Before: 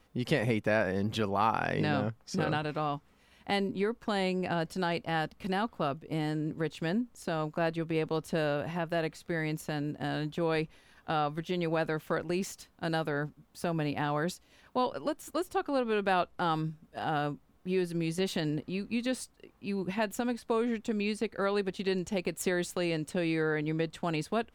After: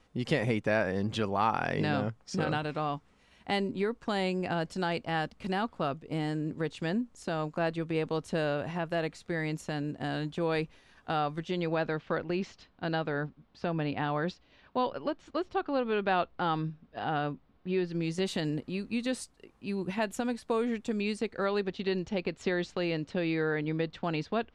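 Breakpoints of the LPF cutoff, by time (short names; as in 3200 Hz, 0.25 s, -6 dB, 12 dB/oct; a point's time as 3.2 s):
LPF 24 dB/oct
11.29 s 9300 Hz
12.03 s 4500 Hz
17.84 s 4500 Hz
18.32 s 11000 Hz
20.99 s 11000 Hz
21.82 s 5100 Hz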